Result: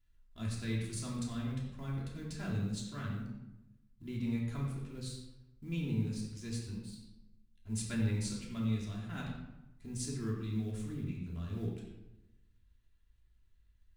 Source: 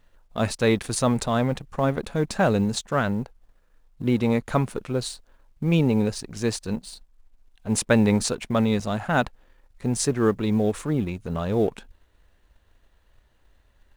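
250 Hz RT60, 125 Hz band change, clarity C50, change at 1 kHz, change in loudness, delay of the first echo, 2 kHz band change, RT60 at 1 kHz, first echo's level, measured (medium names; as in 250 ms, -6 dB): 1.1 s, -9.5 dB, 2.5 dB, -23.5 dB, -14.5 dB, no echo, -18.0 dB, 0.90 s, no echo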